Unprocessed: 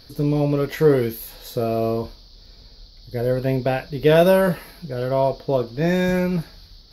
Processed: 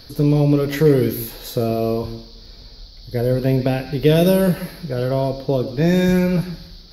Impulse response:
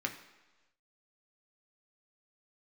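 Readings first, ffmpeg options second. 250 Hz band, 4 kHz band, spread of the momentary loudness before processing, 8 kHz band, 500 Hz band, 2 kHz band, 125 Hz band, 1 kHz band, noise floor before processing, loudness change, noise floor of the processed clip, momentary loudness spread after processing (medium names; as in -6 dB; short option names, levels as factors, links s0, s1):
+4.5 dB, +3.5 dB, 14 LU, no reading, 0.0 dB, -1.5 dB, +5.0 dB, -3.0 dB, -47 dBFS, +2.0 dB, -42 dBFS, 12 LU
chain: -filter_complex "[0:a]acrossover=split=430|3000[s0][s1][s2];[s1]acompressor=threshold=0.0316:ratio=6[s3];[s0][s3][s2]amix=inputs=3:normalize=0,asplit=2[s4][s5];[1:a]atrim=start_sample=2205,adelay=131[s6];[s5][s6]afir=irnorm=-1:irlink=0,volume=0.168[s7];[s4][s7]amix=inputs=2:normalize=0,volume=1.78"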